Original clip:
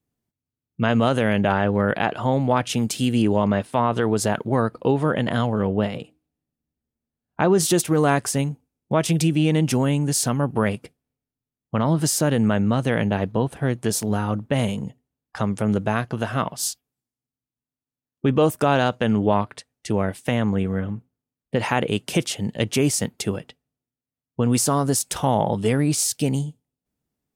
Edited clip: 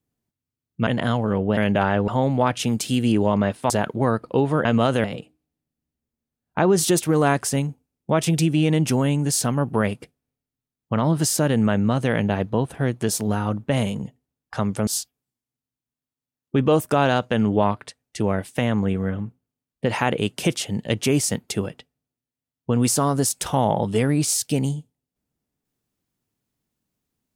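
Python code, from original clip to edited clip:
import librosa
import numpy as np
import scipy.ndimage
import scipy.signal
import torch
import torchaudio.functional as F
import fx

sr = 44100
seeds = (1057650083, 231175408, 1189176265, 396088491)

y = fx.edit(x, sr, fx.swap(start_s=0.87, length_s=0.39, other_s=5.16, other_length_s=0.7),
    fx.cut(start_s=1.77, length_s=0.41),
    fx.cut(start_s=3.8, length_s=0.41),
    fx.cut(start_s=15.69, length_s=0.88), tone=tone)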